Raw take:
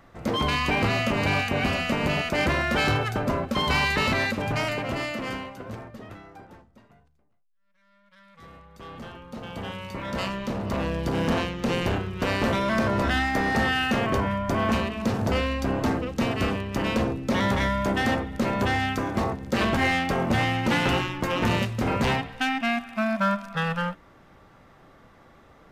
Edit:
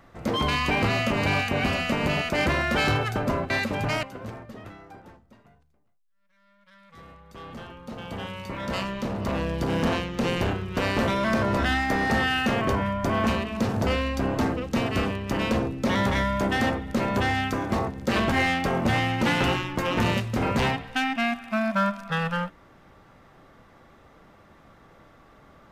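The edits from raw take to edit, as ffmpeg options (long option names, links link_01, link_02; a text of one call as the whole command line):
ffmpeg -i in.wav -filter_complex "[0:a]asplit=3[link_01][link_02][link_03];[link_01]atrim=end=3.502[link_04];[link_02]atrim=start=4.168:end=4.702[link_05];[link_03]atrim=start=5.478[link_06];[link_04][link_05]acrossfade=duration=0.004:curve1=hsin:curve2=hsin[link_07];[link_07][link_06]acrossfade=duration=0.004:curve1=hsin:curve2=hsin" out.wav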